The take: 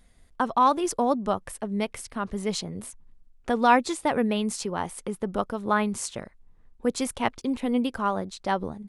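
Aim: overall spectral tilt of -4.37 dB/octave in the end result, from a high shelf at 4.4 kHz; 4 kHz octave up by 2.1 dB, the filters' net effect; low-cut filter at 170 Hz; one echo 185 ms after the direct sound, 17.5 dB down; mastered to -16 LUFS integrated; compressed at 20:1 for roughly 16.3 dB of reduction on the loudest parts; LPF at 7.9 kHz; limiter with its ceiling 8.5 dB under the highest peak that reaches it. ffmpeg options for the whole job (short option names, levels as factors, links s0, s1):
-af "highpass=170,lowpass=7900,equalizer=f=4000:t=o:g=6.5,highshelf=f=4400:g=-7,acompressor=threshold=0.0316:ratio=20,alimiter=level_in=1.12:limit=0.0631:level=0:latency=1,volume=0.891,aecho=1:1:185:0.133,volume=11.9"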